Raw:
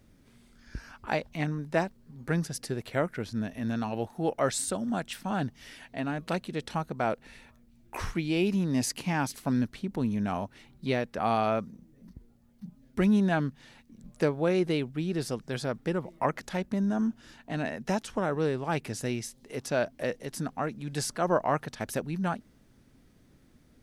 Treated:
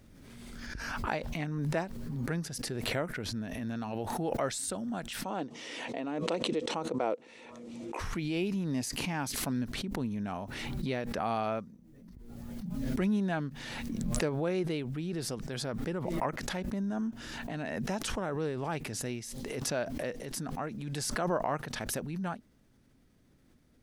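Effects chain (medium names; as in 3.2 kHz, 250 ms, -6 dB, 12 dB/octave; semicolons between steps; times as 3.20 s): 5.24–7.99 s: cabinet simulation 260–8200 Hz, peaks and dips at 320 Hz +7 dB, 490 Hz +10 dB, 1 kHz +3 dB, 1.6 kHz -8 dB, 4.6 kHz -4 dB; swell ahead of each attack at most 25 dB/s; trim -6 dB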